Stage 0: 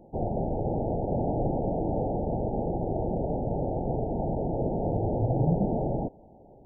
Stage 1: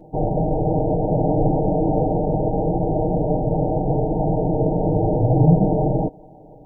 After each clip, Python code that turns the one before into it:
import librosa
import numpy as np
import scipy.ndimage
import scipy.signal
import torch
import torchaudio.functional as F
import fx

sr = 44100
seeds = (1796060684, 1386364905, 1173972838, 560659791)

y = x + 0.95 * np.pad(x, (int(6.5 * sr / 1000.0), 0))[:len(x)]
y = y * librosa.db_to_amplitude(6.0)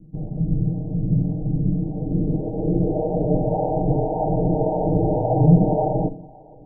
y = fx.filter_sweep_lowpass(x, sr, from_hz=190.0, to_hz=870.0, start_s=1.77, end_s=3.69, q=1.4)
y = fx.harmonic_tremolo(y, sr, hz=1.8, depth_pct=70, crossover_hz=470.0)
y = fx.room_shoebox(y, sr, seeds[0], volume_m3=380.0, walls='furnished', distance_m=0.52)